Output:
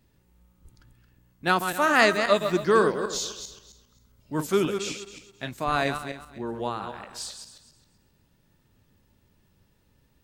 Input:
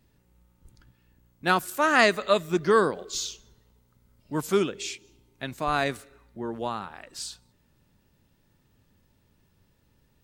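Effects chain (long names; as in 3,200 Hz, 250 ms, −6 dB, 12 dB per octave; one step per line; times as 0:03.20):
feedback delay that plays each chunk backwards 133 ms, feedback 45%, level −7.5 dB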